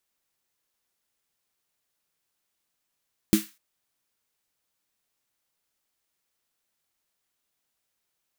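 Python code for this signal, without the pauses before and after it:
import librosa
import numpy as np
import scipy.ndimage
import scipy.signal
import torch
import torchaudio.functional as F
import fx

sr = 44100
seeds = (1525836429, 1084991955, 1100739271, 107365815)

y = fx.drum_snare(sr, seeds[0], length_s=0.25, hz=210.0, second_hz=320.0, noise_db=-10.0, noise_from_hz=1300.0, decay_s=0.17, noise_decay_s=0.32)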